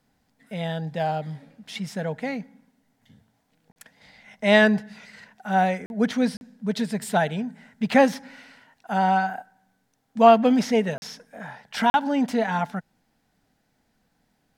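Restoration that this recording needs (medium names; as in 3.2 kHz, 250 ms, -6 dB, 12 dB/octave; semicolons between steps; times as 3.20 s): interpolate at 3.72/5.86/6.37/10.98/11.90 s, 41 ms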